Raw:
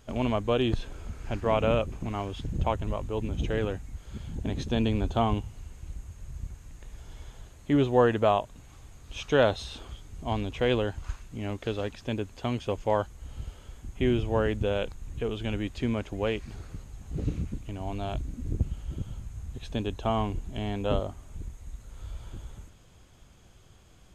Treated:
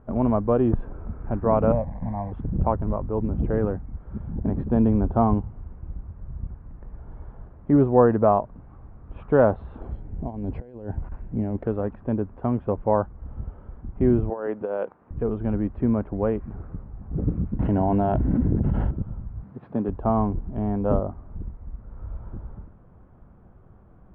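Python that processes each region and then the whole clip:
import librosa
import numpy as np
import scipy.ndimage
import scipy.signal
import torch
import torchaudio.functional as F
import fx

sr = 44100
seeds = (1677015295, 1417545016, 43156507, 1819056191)

y = fx.chain(x, sr, fx.delta_mod(bps=32000, step_db=-32.5),
    fx.peak_eq(hz=1400.0, db=-10.5, octaves=0.37),
    fx.fixed_phaser(hz=1900.0, stages=8), at=(1.72, 2.32))
y = fx.chain(y, sr, fx.peak_eq(hz=1200.0, db=-11.5, octaves=0.54),
    fx.over_compress(threshold_db=-34.0, ratio=-0.5),
    fx.resample_bad(factor=6, down='filtered', up='zero_stuff'), at=(9.81, 11.64))
y = fx.chain(y, sr, fx.highpass(hz=430.0, slope=12),
    fx.over_compress(threshold_db=-31.0, ratio=-0.5), at=(14.3, 15.11))
y = fx.chain(y, sr, fx.high_shelf(hz=2700.0, db=10.0),
    fx.notch_comb(f0_hz=1200.0),
    fx.env_flatten(amount_pct=100), at=(17.59, 18.91))
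y = fx.chain(y, sr, fx.cvsd(bps=32000),
    fx.highpass(hz=130.0, slope=24),
    fx.peak_eq(hz=4700.0, db=9.0, octaves=0.36), at=(19.43, 19.89))
y = scipy.signal.sosfilt(scipy.signal.butter(4, 1300.0, 'lowpass', fs=sr, output='sos'), y)
y = fx.peak_eq(y, sr, hz=200.0, db=5.0, octaves=0.6)
y = y * 10.0 ** (4.5 / 20.0)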